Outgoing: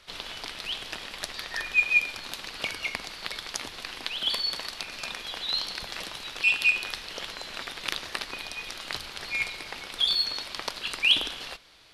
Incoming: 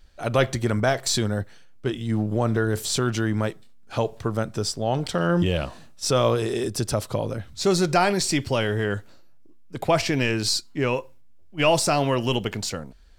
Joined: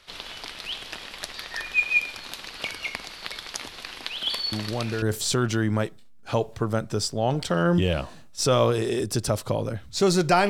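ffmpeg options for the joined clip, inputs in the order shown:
ffmpeg -i cue0.wav -i cue1.wav -filter_complex "[1:a]asplit=2[link_01][link_02];[0:a]apad=whole_dur=10.49,atrim=end=10.49,atrim=end=5.022[link_03];[link_02]atrim=start=2.658:end=8.13[link_04];[link_01]atrim=start=2.16:end=2.66,asetpts=PTS-STARTPTS,volume=-6.5dB,afade=type=in:duration=0.004:curve=hsin,afade=type=out:start_time=0.496:duration=0.004:curve=hsin,adelay=4520[link_05];[link_03][link_04]acrossfade=duration=0.004:curve1=hsin:curve2=hsin[link_06];[link_06][link_05]amix=inputs=2:normalize=0" out.wav

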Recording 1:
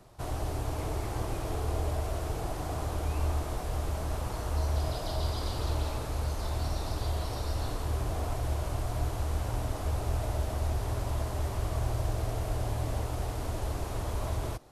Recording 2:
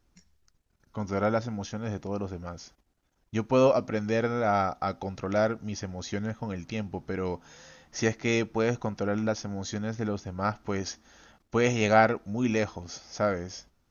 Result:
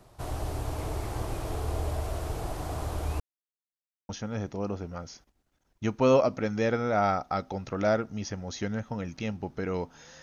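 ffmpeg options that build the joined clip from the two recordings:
ffmpeg -i cue0.wav -i cue1.wav -filter_complex "[0:a]apad=whole_dur=10.22,atrim=end=10.22,asplit=2[link_01][link_02];[link_01]atrim=end=3.2,asetpts=PTS-STARTPTS,afade=type=out:start_time=3.196:duration=0.004:curve=hsin[link_03];[link_02]atrim=start=3.2:end=4.09,asetpts=PTS-STARTPTS,volume=0[link_04];[1:a]atrim=start=1.6:end=7.73,asetpts=PTS-STARTPTS,afade=type=in:duration=0.004:curve=hsin[link_05];[link_03][link_04][link_05]concat=n=3:v=0:a=1" out.wav

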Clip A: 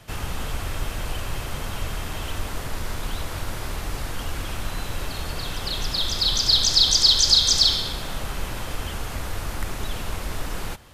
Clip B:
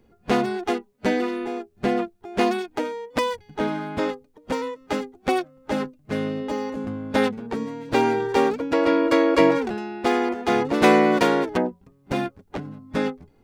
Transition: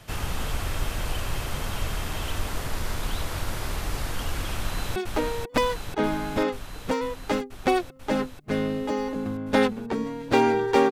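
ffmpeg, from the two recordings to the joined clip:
ffmpeg -i cue0.wav -i cue1.wav -filter_complex "[0:a]apad=whole_dur=10.91,atrim=end=10.91,atrim=end=4.962[link_01];[1:a]atrim=start=2.568:end=8.52[link_02];[link_01][link_02]acrossfade=duration=0.004:curve1=hsin:curve2=hsin,asplit=2[link_03][link_04];[link_04]afade=type=in:start_time=4.56:duration=0.01,afade=type=out:start_time=4.96:duration=0.01,aecho=0:1:490|980|1470|1960|2450|2940|3430|3920|4410|4900|5390|5880:0.668344|0.534675|0.42774|0.342192|0.273754|0.219003|0.175202|0.140162|0.11213|0.0897036|0.0717629|0.0574103[link_05];[link_03][link_05]amix=inputs=2:normalize=0" out.wav

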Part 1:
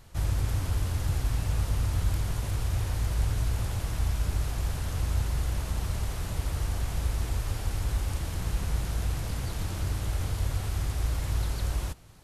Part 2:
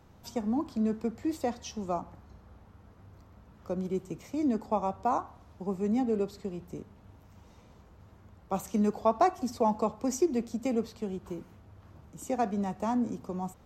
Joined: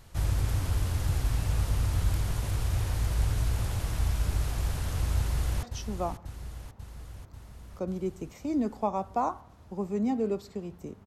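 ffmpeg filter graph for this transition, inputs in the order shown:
ffmpeg -i cue0.wav -i cue1.wav -filter_complex "[0:a]apad=whole_dur=11.06,atrim=end=11.06,atrim=end=5.632[link_01];[1:a]atrim=start=1.518:end=6.95[link_02];[link_01][link_02]acrossfade=duration=0.004:curve1=hsin:curve2=hsin,asplit=2[link_03][link_04];[link_04]afade=type=in:start_time=5.17:duration=0.01,afade=type=out:start_time=5.63:duration=0.01,aecho=0:1:540|1080|1620|2160|2700|3240|3780|4320|4860|5400:0.334965|0.234476|0.164133|0.114893|0.0804252|0.0562976|0.0394083|0.0275858|0.0193101|0.0135171[link_05];[link_03][link_05]amix=inputs=2:normalize=0" out.wav

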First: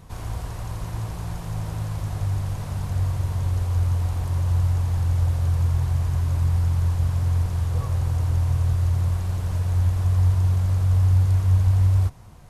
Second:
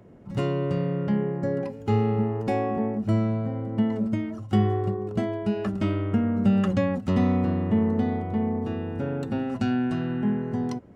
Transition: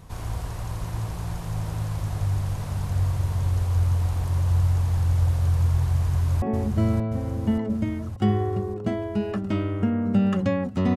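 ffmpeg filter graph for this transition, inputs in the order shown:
ffmpeg -i cue0.wav -i cue1.wav -filter_complex "[0:a]apad=whole_dur=10.96,atrim=end=10.96,atrim=end=6.422[link_01];[1:a]atrim=start=2.728:end=7.27[link_02];[link_01][link_02]acrossfade=duration=0.004:curve1=hsin:curve2=hsin,asplit=2[link_03][link_04];[link_04]afade=type=in:start_time=5.95:duration=0.01,afade=type=out:start_time=6.42:duration=0.01,aecho=0:1:580|1160|1740|2320|2900|3480|4060|4640|5220|5800:0.562341|0.365522|0.237589|0.154433|0.100381|0.0652479|0.0424112|0.0275673|0.0179187|0.0116472[link_05];[link_03][link_05]amix=inputs=2:normalize=0" out.wav

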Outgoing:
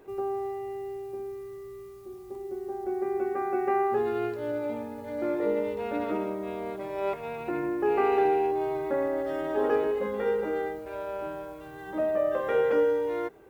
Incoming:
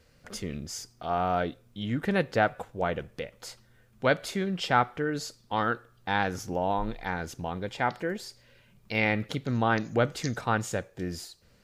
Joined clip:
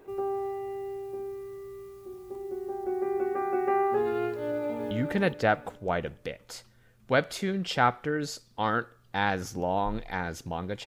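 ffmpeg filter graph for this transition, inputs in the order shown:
ffmpeg -i cue0.wav -i cue1.wav -filter_complex "[0:a]apad=whole_dur=10.86,atrim=end=10.86,atrim=end=4.912[link_01];[1:a]atrim=start=1.838:end=7.79[link_02];[link_01][link_02]acrossfade=duration=0.004:curve1=hsin:curve2=hsin,asplit=2[link_03][link_04];[link_04]afade=type=in:start_time=4.37:duration=0.01,afade=type=out:start_time=4.91:duration=0.01,aecho=0:1:420|840|1260|1680:0.562341|0.168702|0.0506107|0.0151832[link_05];[link_03][link_05]amix=inputs=2:normalize=0" out.wav

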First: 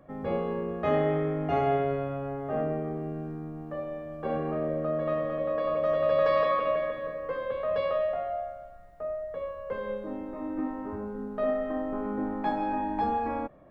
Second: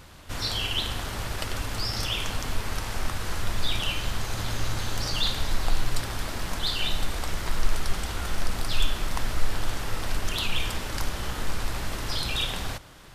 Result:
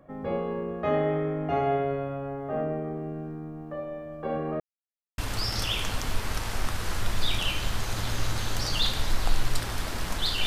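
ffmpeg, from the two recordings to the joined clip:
ffmpeg -i cue0.wav -i cue1.wav -filter_complex "[0:a]apad=whole_dur=10.46,atrim=end=10.46,asplit=2[link_01][link_02];[link_01]atrim=end=4.6,asetpts=PTS-STARTPTS,afade=type=out:start_time=4.596:duration=0.004:curve=hsin[link_03];[link_02]atrim=start=4.6:end=5.18,asetpts=PTS-STARTPTS,volume=0[link_04];[1:a]atrim=start=1.59:end=6.87,asetpts=PTS-STARTPTS,afade=type=in:duration=0.004:curve=hsin[link_05];[link_03][link_04][link_05]concat=n=3:v=0:a=1" out.wav

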